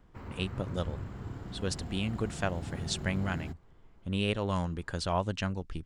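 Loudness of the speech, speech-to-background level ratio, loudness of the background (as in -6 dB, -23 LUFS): -34.0 LUFS, 7.5 dB, -41.5 LUFS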